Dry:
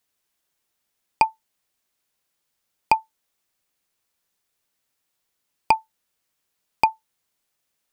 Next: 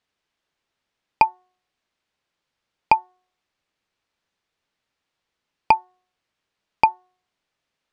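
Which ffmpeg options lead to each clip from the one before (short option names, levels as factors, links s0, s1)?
-af "lowpass=4000,bandreject=f=365.9:t=h:w=4,bandreject=f=731.8:t=h:w=4,bandreject=f=1097.7:t=h:w=4,bandreject=f=1463.6:t=h:w=4,bandreject=f=1829.5:t=h:w=4,volume=1.33"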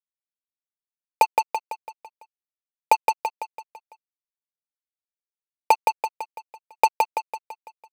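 -filter_complex "[0:a]highpass=f=490:t=q:w=4.9,acrusher=bits=2:mix=0:aa=0.5,asplit=2[s0][s1];[s1]aecho=0:1:167|334|501|668|835|1002:0.631|0.315|0.158|0.0789|0.0394|0.0197[s2];[s0][s2]amix=inputs=2:normalize=0,volume=0.562"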